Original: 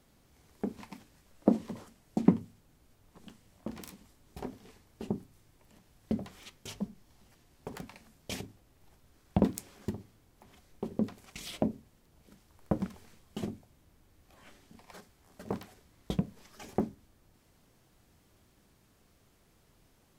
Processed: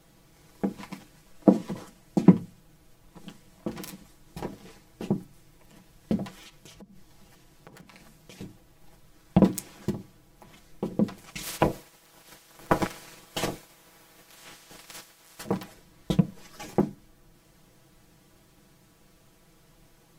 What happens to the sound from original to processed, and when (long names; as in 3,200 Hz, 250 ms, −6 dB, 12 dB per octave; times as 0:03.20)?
0:06.29–0:08.41: downward compressor 16 to 1, threshold −51 dBFS
0:11.42–0:15.44: ceiling on every frequency bin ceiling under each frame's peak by 23 dB
whole clip: comb filter 6.1 ms, depth 82%; level +5 dB